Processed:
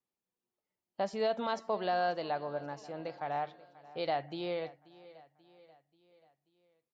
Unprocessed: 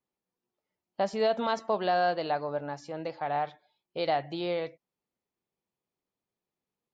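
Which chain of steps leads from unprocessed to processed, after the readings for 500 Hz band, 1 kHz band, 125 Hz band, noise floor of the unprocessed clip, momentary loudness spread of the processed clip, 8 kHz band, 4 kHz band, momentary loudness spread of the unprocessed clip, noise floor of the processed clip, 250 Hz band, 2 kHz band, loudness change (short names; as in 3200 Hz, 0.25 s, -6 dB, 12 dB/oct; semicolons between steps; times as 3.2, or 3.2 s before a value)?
-5.0 dB, -5.0 dB, -5.0 dB, under -85 dBFS, 13 LU, n/a, -5.0 dB, 11 LU, under -85 dBFS, -5.0 dB, -5.0 dB, -5.0 dB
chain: feedback echo 0.535 s, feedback 52%, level -20 dB; gain -5 dB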